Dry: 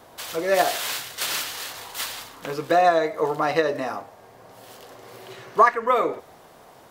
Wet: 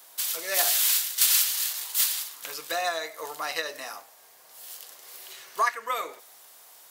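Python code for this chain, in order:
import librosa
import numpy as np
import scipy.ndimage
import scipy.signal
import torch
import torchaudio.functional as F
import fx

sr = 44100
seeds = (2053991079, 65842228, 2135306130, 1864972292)

y = np.diff(x, prepend=0.0)
y = y * librosa.db_to_amplitude(7.5)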